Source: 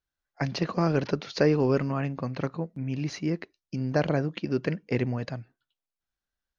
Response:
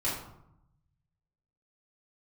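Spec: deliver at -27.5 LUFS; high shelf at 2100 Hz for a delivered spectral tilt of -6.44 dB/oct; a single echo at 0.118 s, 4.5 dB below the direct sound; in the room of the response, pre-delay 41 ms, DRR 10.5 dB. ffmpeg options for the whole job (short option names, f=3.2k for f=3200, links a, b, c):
-filter_complex "[0:a]highshelf=f=2.1k:g=-4,aecho=1:1:118:0.596,asplit=2[a][b];[1:a]atrim=start_sample=2205,adelay=41[c];[b][c]afir=irnorm=-1:irlink=0,volume=-18dB[d];[a][d]amix=inputs=2:normalize=0"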